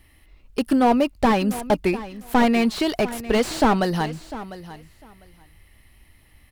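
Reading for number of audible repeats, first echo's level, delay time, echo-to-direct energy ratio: 2, −15.5 dB, 700 ms, −15.5 dB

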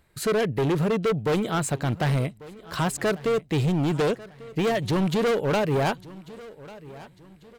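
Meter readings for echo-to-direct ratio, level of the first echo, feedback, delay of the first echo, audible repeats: −19.0 dB, −19.5 dB, 39%, 1,144 ms, 2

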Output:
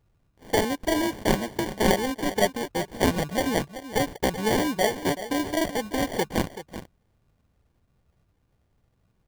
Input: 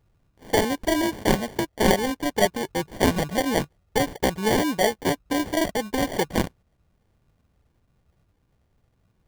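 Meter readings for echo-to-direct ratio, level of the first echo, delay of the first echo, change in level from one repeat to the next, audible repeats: −12.5 dB, −12.5 dB, 381 ms, repeats not evenly spaced, 1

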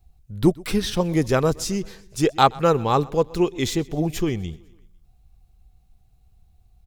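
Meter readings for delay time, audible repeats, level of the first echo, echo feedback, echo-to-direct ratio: 125 ms, 3, −23.5 dB, 58%, −22.0 dB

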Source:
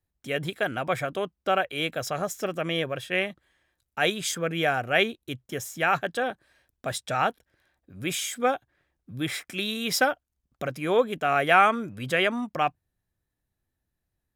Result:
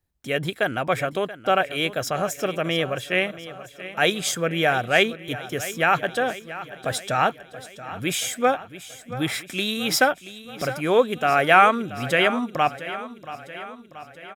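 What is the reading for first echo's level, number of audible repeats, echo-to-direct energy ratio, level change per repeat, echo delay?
−15.0 dB, 5, −13.0 dB, −4.5 dB, 680 ms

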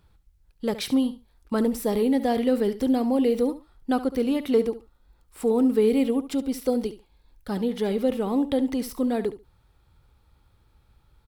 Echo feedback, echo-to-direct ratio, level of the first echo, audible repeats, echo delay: 16%, −14.0 dB, −14.0 dB, 2, 70 ms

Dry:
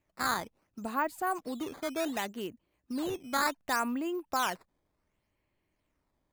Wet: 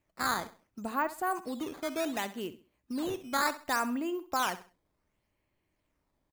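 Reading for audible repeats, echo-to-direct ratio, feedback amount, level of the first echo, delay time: 2, −14.0 dB, 30%, −14.5 dB, 66 ms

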